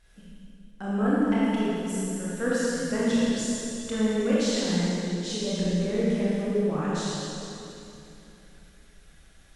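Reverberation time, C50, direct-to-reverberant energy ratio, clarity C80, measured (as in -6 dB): 2.9 s, -5.5 dB, -9.0 dB, -3.0 dB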